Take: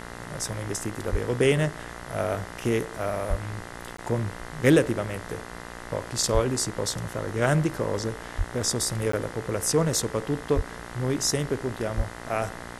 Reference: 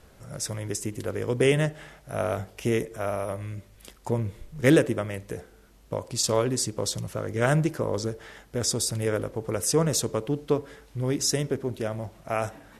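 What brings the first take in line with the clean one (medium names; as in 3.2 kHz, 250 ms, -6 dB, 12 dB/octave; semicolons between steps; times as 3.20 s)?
de-hum 59.1 Hz, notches 35; de-plosive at 1.11/3.29/6.33/8.37/10.55/11.96 s; interpolate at 3.97/9.12 s, 14 ms; noise print and reduce 13 dB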